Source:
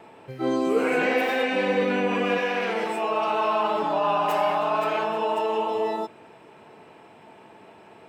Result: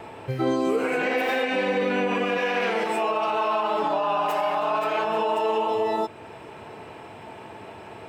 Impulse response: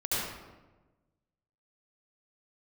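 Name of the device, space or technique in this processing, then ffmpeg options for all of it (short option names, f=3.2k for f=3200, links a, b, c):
car stereo with a boomy subwoofer: -filter_complex "[0:a]lowshelf=f=130:t=q:w=1.5:g=6.5,alimiter=limit=-23.5dB:level=0:latency=1:release=348,asettb=1/sr,asplit=3[a][b][c];[a]atrim=end=3.374[d];[b]atrim=start=3.37:end=5.05,asetpts=PTS-STARTPTS,afade=t=in:d=0.004:c=qsin,afade=t=out:st=1.676:d=0.004:c=qsin,highpass=160[e];[c]atrim=start=5.046[f];[d][e]acrossfade=d=0.004:c1=hsin:c2=qsin[g];[g][f]acrossfade=d=0.004:c1=qsin:c2=hsin,volume=8dB"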